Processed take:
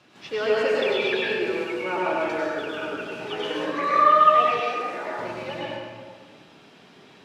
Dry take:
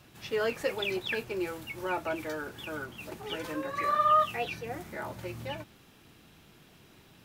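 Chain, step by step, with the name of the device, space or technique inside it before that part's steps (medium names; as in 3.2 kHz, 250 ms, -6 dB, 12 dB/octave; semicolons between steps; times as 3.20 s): supermarket ceiling speaker (band-pass 210–5400 Hz; reverberation RT60 1.7 s, pre-delay 92 ms, DRR -5.5 dB); 4.60–5.19 s: high-pass 280 Hz 12 dB/octave; trim +2 dB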